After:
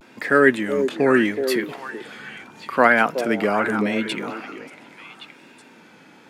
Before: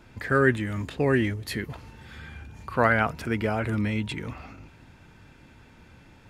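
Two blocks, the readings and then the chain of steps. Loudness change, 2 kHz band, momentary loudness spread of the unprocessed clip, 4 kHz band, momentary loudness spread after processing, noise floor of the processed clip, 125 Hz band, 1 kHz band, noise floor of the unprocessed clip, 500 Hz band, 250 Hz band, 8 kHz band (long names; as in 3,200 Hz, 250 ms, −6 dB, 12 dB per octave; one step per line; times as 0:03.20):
+6.0 dB, +7.0 dB, 21 LU, +7.0 dB, 20 LU, −49 dBFS, −7.5 dB, +7.0 dB, −53 dBFS, +7.5 dB, +6.0 dB, +6.5 dB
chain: high-pass filter 200 Hz 24 dB per octave
pitch vibrato 0.78 Hz 71 cents
echo through a band-pass that steps 373 ms, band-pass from 430 Hz, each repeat 1.4 octaves, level −4.5 dB
level +6.5 dB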